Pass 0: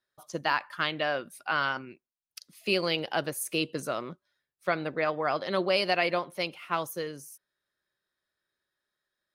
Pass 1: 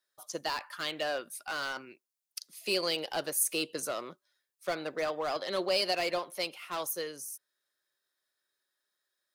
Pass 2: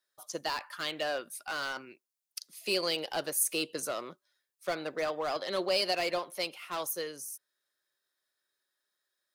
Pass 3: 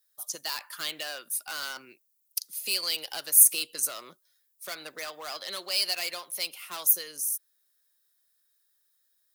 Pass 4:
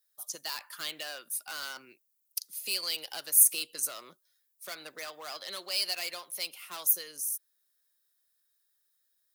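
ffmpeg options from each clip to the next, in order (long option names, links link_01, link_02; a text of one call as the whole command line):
ffmpeg -i in.wav -filter_complex "[0:a]bass=frequency=250:gain=-13,treble=frequency=4000:gain=8,acrossover=split=690|3500[link_01][link_02][link_03];[link_02]volume=34.5dB,asoftclip=hard,volume=-34.5dB[link_04];[link_01][link_04][link_03]amix=inputs=3:normalize=0,volume=-1.5dB" out.wav
ffmpeg -i in.wav -af anull out.wav
ffmpeg -i in.wav -filter_complex "[0:a]aemphasis=mode=production:type=75fm,acrossover=split=960[link_01][link_02];[link_01]acompressor=threshold=-43dB:ratio=6[link_03];[link_03][link_02]amix=inputs=2:normalize=0,volume=-2dB" out.wav
ffmpeg -i in.wav -af "highpass=53,volume=-3.5dB" out.wav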